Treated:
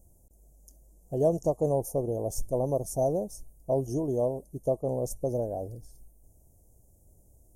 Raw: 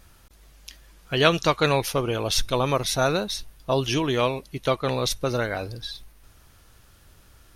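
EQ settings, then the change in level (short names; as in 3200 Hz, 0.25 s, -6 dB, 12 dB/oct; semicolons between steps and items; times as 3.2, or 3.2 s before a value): dynamic EQ 830 Hz, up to +4 dB, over -36 dBFS, Q 0.73; elliptic band-stop 680–7200 Hz, stop band 40 dB; -5.0 dB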